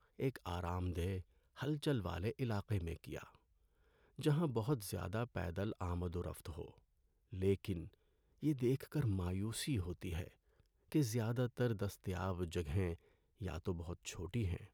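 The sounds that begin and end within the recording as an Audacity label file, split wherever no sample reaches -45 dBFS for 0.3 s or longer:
1.590000	3.230000	sound
4.190000	6.680000	sound
7.330000	7.850000	sound
8.430000	10.270000	sound
10.920000	12.940000	sound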